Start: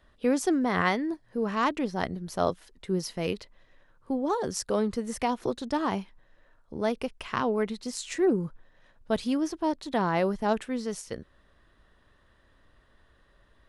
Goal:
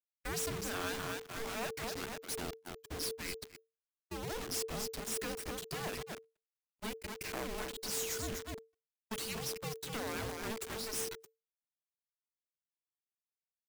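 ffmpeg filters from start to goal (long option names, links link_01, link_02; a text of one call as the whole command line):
ffmpeg -i in.wav -filter_complex "[0:a]aderivative,asplit=2[link_01][link_02];[link_02]adelay=247,lowpass=frequency=4600:poles=1,volume=-8.5dB,asplit=2[link_03][link_04];[link_04]adelay=247,lowpass=frequency=4600:poles=1,volume=0.51,asplit=2[link_05][link_06];[link_06]adelay=247,lowpass=frequency=4600:poles=1,volume=0.51,asplit=2[link_07][link_08];[link_08]adelay=247,lowpass=frequency=4600:poles=1,volume=0.51,asplit=2[link_09][link_10];[link_10]adelay=247,lowpass=frequency=4600:poles=1,volume=0.51,asplit=2[link_11][link_12];[link_12]adelay=247,lowpass=frequency=4600:poles=1,volume=0.51[link_13];[link_01][link_03][link_05][link_07][link_09][link_11][link_13]amix=inputs=7:normalize=0,aeval=exprs='(tanh(126*val(0)+0.5)-tanh(0.5))/126':channel_layout=same,afftfilt=real='re*gte(hypot(re,im),0.00282)':imag='im*gte(hypot(re,im),0.00282)':win_size=1024:overlap=0.75,asplit=2[link_14][link_15];[link_15]acompressor=threshold=-59dB:ratio=16,volume=-2dB[link_16];[link_14][link_16]amix=inputs=2:normalize=0,bandreject=frequency=4000:width=10,acrossover=split=180[link_17][link_18];[link_17]acompressor=threshold=-49dB:ratio=3[link_19];[link_19][link_18]amix=inputs=2:normalize=0,acrusher=bits=6:dc=4:mix=0:aa=0.000001,agate=range=-38dB:threshold=-57dB:ratio=16:detection=peak,afreqshift=-450,volume=15dB" out.wav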